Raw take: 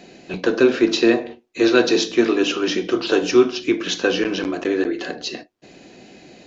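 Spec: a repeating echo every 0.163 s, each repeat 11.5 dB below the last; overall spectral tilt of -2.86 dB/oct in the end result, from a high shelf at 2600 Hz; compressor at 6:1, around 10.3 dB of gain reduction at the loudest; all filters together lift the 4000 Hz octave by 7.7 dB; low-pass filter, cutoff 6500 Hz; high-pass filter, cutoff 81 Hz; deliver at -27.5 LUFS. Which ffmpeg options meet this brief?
-af "highpass=81,lowpass=6.5k,highshelf=f=2.6k:g=3.5,equalizer=f=4k:t=o:g=7,acompressor=threshold=-20dB:ratio=6,aecho=1:1:163|326|489:0.266|0.0718|0.0194,volume=-3.5dB"

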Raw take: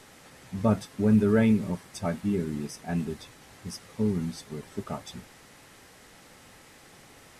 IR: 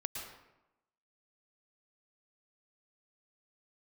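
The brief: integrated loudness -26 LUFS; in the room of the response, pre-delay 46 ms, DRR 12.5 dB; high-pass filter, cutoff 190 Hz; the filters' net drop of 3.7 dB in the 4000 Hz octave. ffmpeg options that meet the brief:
-filter_complex "[0:a]highpass=190,equalizer=f=4k:t=o:g=-5,asplit=2[a][b];[1:a]atrim=start_sample=2205,adelay=46[c];[b][c]afir=irnorm=-1:irlink=0,volume=-13dB[d];[a][d]amix=inputs=2:normalize=0,volume=3.5dB"

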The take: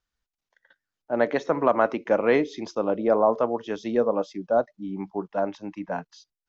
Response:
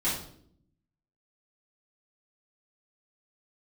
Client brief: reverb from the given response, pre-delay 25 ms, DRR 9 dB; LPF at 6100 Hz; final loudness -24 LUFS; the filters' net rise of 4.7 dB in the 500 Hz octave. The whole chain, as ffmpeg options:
-filter_complex "[0:a]lowpass=6.1k,equalizer=f=500:t=o:g=5.5,asplit=2[a][b];[1:a]atrim=start_sample=2205,adelay=25[c];[b][c]afir=irnorm=-1:irlink=0,volume=-18dB[d];[a][d]amix=inputs=2:normalize=0,volume=-3dB"

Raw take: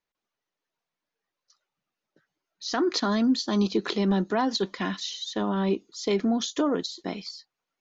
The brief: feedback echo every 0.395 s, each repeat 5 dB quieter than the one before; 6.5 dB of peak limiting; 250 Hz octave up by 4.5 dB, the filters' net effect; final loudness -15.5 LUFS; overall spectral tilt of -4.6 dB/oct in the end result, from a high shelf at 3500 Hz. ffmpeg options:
-af "equalizer=f=250:t=o:g=5.5,highshelf=f=3.5k:g=7,alimiter=limit=-14.5dB:level=0:latency=1,aecho=1:1:395|790|1185|1580|1975|2370|2765:0.562|0.315|0.176|0.0988|0.0553|0.031|0.0173,volume=8dB"

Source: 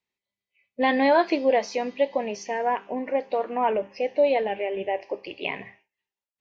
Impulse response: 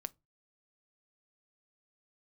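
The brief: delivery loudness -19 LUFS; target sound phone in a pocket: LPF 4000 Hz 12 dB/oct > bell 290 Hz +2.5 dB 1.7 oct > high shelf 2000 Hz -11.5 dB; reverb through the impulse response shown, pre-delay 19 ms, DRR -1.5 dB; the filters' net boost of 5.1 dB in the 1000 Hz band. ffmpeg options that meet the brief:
-filter_complex "[0:a]equalizer=f=1k:t=o:g=8.5,asplit=2[a][b];[1:a]atrim=start_sample=2205,adelay=19[c];[b][c]afir=irnorm=-1:irlink=0,volume=4.5dB[d];[a][d]amix=inputs=2:normalize=0,lowpass=4k,equalizer=f=290:t=o:w=1.7:g=2.5,highshelf=f=2k:g=-11.5,volume=-1.5dB"

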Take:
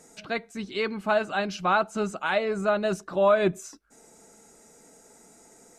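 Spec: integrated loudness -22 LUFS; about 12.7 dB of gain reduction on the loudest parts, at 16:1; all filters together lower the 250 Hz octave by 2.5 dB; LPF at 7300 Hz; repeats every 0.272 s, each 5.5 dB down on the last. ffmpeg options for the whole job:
-af "lowpass=7.3k,equalizer=f=250:t=o:g=-3.5,acompressor=threshold=-30dB:ratio=16,aecho=1:1:272|544|816|1088|1360|1632|1904:0.531|0.281|0.149|0.079|0.0419|0.0222|0.0118,volume=13dB"

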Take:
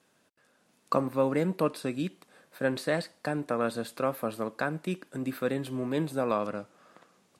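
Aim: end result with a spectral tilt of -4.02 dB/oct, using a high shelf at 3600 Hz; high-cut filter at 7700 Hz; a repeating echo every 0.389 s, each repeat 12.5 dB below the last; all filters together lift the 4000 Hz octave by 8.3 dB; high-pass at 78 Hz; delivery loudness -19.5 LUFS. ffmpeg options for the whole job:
-af "highpass=78,lowpass=7.7k,highshelf=f=3.6k:g=7.5,equalizer=f=4k:t=o:g=5,aecho=1:1:389|778|1167:0.237|0.0569|0.0137,volume=11dB"

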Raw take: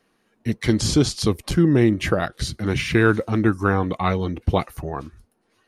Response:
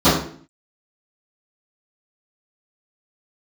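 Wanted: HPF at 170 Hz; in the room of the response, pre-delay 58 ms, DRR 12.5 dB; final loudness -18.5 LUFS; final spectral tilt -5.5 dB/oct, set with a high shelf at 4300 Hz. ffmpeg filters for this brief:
-filter_complex "[0:a]highpass=170,highshelf=f=4.3k:g=-7,asplit=2[a][b];[1:a]atrim=start_sample=2205,adelay=58[c];[b][c]afir=irnorm=-1:irlink=0,volume=-37.5dB[d];[a][d]amix=inputs=2:normalize=0,volume=3dB"

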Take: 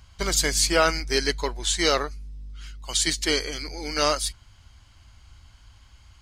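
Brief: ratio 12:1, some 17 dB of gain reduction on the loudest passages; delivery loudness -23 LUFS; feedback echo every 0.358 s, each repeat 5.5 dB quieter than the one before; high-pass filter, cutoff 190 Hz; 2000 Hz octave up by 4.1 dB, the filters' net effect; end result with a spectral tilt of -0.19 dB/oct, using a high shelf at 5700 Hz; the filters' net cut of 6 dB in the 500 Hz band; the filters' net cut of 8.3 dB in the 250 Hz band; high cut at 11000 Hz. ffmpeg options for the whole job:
-af "highpass=190,lowpass=11k,equalizer=f=250:t=o:g=-8.5,equalizer=f=500:t=o:g=-5.5,equalizer=f=2k:t=o:g=6.5,highshelf=f=5.7k:g=-8,acompressor=threshold=-32dB:ratio=12,aecho=1:1:358|716|1074|1432|1790|2148|2506:0.531|0.281|0.149|0.079|0.0419|0.0222|0.0118,volume=12dB"

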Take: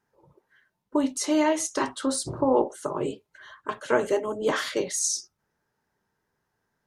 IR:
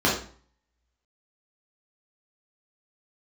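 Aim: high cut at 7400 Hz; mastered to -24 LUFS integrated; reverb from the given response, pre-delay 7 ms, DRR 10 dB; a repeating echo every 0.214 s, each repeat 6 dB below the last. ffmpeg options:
-filter_complex "[0:a]lowpass=7.4k,aecho=1:1:214|428|642|856|1070|1284:0.501|0.251|0.125|0.0626|0.0313|0.0157,asplit=2[a][b];[1:a]atrim=start_sample=2205,adelay=7[c];[b][c]afir=irnorm=-1:irlink=0,volume=-27dB[d];[a][d]amix=inputs=2:normalize=0,volume=1dB"

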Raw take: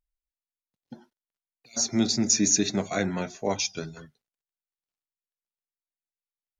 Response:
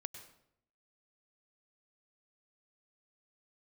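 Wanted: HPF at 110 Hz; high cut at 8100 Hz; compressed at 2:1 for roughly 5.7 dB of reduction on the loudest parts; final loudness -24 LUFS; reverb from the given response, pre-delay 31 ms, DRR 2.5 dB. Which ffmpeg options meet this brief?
-filter_complex "[0:a]highpass=110,lowpass=8.1k,acompressor=threshold=-29dB:ratio=2,asplit=2[a][b];[1:a]atrim=start_sample=2205,adelay=31[c];[b][c]afir=irnorm=-1:irlink=0,volume=0.5dB[d];[a][d]amix=inputs=2:normalize=0,volume=5dB"

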